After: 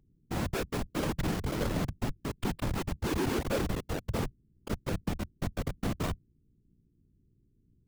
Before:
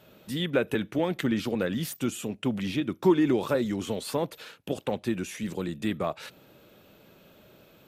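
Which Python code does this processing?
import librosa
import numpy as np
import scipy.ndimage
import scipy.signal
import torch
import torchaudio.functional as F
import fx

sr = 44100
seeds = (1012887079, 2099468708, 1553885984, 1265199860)

y = fx.schmitt(x, sr, flips_db=-26.0)
y = fx.add_hum(y, sr, base_hz=60, snr_db=33)
y = fx.whisperise(y, sr, seeds[0])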